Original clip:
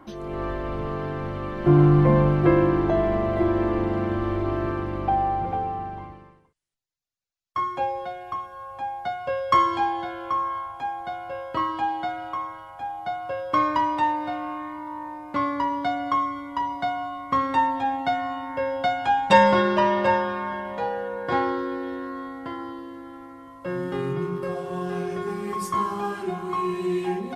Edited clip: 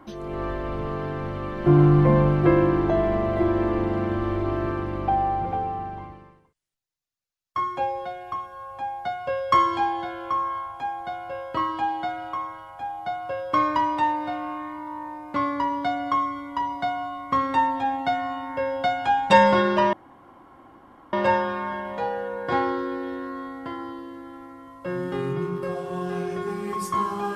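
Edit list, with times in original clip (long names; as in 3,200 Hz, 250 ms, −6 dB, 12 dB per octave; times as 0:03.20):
0:19.93: splice in room tone 1.20 s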